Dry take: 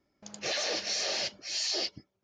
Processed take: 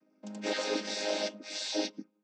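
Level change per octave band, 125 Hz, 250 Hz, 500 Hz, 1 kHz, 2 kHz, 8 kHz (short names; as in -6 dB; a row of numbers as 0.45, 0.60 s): n/a, +10.0 dB, +4.5 dB, +1.0 dB, -2.0 dB, -6.0 dB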